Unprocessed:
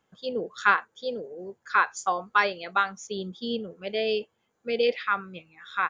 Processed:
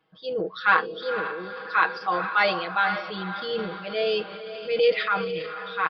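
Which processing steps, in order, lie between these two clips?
low-shelf EQ 85 Hz −9 dB
comb filter 6.3 ms, depth 92%
feedback delay with all-pass diffusion 490 ms, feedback 48%, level −12 dB
transient designer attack −4 dB, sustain +6 dB
downsampling to 11,025 Hz

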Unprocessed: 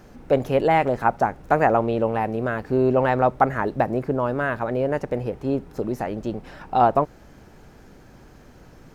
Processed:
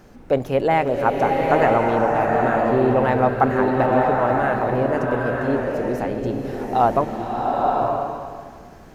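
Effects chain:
mains-hum notches 50/100/150 Hz
slow-attack reverb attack 940 ms, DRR −0.5 dB

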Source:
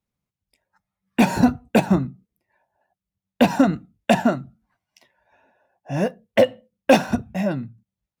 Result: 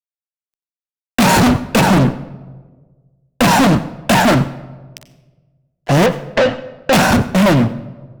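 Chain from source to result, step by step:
fuzz pedal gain 34 dB, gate −43 dBFS
0:06.06–0:06.93: high-frequency loss of the air 150 metres
on a send: convolution reverb RT60 1.4 s, pre-delay 87 ms, DRR 15 dB
on the sum: level +4 dB

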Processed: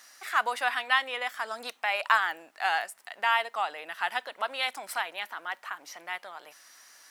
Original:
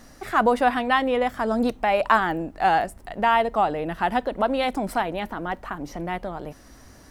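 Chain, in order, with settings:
high-pass filter 1,500 Hz 12 dB per octave
level +1.5 dB

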